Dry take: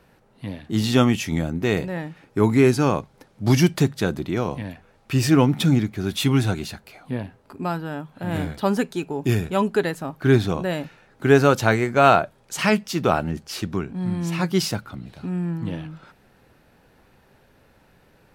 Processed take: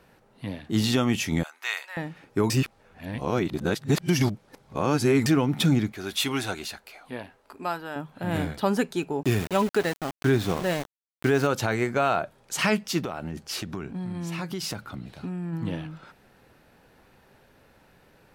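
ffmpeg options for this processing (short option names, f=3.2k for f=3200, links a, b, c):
-filter_complex "[0:a]asettb=1/sr,asplit=3[a][b][c];[a]atrim=end=1.434[d];[b]atrim=start=1.43:end=1.97,asetpts=PTS-STARTPTS,afade=t=in:d=0.004:c=qsin,afade=t=out:st=0.536:d=0.004:c=qsin,highpass=f=1k:w=0.5412,highpass=f=1k:w=1.3066[e];[c]atrim=start=1.966[f];[d][e]acrossfade=d=0.004:c1=hsin:c2=qsin[g];[g][f]acrossfade=d=0.004:c1=qsin:c2=hsin,asettb=1/sr,asplit=3[h][i][j];[h]atrim=end=5.924[k];[i]atrim=start=5.92:end=7.96,asetpts=PTS-STARTPTS,afade=t=in:d=0.004:c=qsin,afade=t=out:st=2.036:d=0.004:c=qsin,equalizer=f=130:w=0.54:g=-14[l];[j]atrim=start=7.956[m];[k][l]acrossfade=d=0.004:c1=hsin:c2=qsin[n];[n][m]acrossfade=d=0.004:c1=qsin:c2=hsin,asettb=1/sr,asplit=3[o][p][q];[o]atrim=end=9.234[r];[p]atrim=start=9.23:end=11.47,asetpts=PTS-STARTPTS,afade=t=in:d=0.004:c=qsin,afade=t=out:st=2.236:d=0.004:c=qsin,aeval=exprs='val(0)*gte(abs(val(0)),0.0335)':c=same[s];[q]atrim=start=11.466[t];[r][s]acrossfade=d=0.004:c1=hsin:c2=qsin[u];[u][t]acrossfade=d=0.004:c1=qsin:c2=hsin,asplit=3[v][w][x];[v]afade=t=out:st=13:d=0.02[y];[w]acompressor=threshold=-26dB:ratio=16:attack=3.2:release=140:knee=1:detection=peak,afade=t=in:st=13:d=0.02,afade=t=out:st=15.52:d=0.02[z];[x]afade=t=in:st=15.52:d=0.02[aa];[y][z][aa]amix=inputs=3:normalize=0,asplit=3[ab][ac][ad];[ab]atrim=end=2.502[ae];[ac]atrim=start=2.498:end=5.262,asetpts=PTS-STARTPTS,areverse[af];[ad]atrim=start=5.258[ag];[ae][af]acrossfade=d=0.004:c1=hsin:c2=hsin[ah];[ah][ag]acrossfade=d=0.004:c1=hsin:c2=hsin,lowshelf=f=220:g=-3.5,alimiter=limit=-12dB:level=0:latency=1:release=168"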